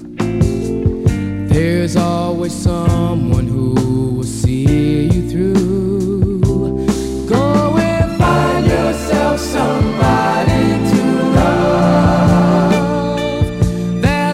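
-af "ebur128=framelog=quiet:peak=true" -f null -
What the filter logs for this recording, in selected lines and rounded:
Integrated loudness:
  I:         -14.4 LUFS
  Threshold: -24.4 LUFS
Loudness range:
  LRA:         2.9 LU
  Threshold: -34.2 LUFS
  LRA low:   -15.5 LUFS
  LRA high:  -12.6 LUFS
True peak:
  Peak:       -3.5 dBFS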